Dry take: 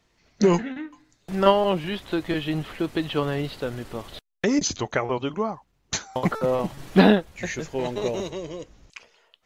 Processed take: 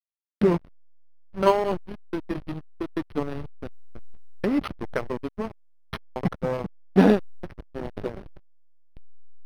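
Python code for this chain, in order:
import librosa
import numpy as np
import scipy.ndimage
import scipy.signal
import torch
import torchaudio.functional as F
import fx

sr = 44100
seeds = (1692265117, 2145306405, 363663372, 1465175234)

y = fx.spec_quant(x, sr, step_db=15)
y = fx.backlash(y, sr, play_db=-18.0)
y = np.interp(np.arange(len(y)), np.arange(len(y))[::6], y[::6])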